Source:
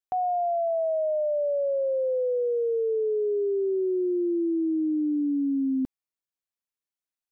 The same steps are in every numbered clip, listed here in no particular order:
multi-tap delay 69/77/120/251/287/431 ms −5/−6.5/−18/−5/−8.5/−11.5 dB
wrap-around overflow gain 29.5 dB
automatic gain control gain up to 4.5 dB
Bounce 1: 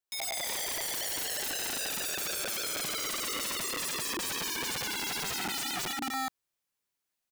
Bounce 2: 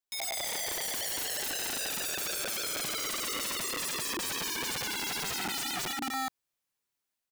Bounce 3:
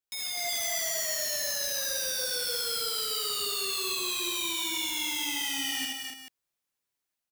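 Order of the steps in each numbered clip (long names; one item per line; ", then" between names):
multi-tap delay, then automatic gain control, then wrap-around overflow
automatic gain control, then multi-tap delay, then wrap-around overflow
automatic gain control, then wrap-around overflow, then multi-tap delay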